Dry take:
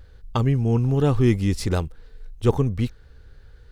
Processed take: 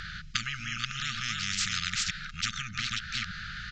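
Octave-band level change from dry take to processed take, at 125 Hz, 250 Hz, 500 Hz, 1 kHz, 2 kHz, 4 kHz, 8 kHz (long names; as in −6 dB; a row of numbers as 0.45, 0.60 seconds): −20.5 dB, −22.0 dB, below −40 dB, −6.5 dB, +8.0 dB, +9.5 dB, +8.0 dB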